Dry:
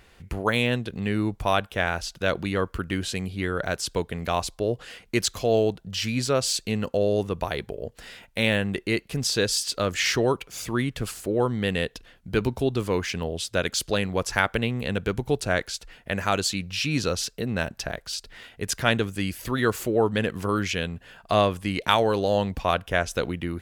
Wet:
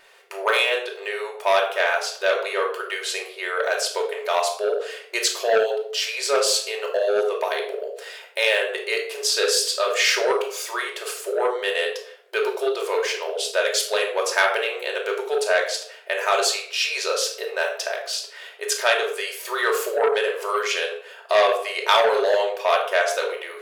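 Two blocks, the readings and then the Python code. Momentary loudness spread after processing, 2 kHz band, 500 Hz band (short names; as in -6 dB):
9 LU, +5.5 dB, +4.5 dB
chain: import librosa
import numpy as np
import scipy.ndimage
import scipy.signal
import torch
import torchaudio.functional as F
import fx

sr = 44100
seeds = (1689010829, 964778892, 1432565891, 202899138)

y = fx.brickwall_highpass(x, sr, low_hz=380.0)
y = fx.room_shoebox(y, sr, seeds[0], volume_m3=1000.0, walls='furnished', distance_m=2.7)
y = fx.transformer_sat(y, sr, knee_hz=1900.0)
y = y * librosa.db_to_amplitude(2.5)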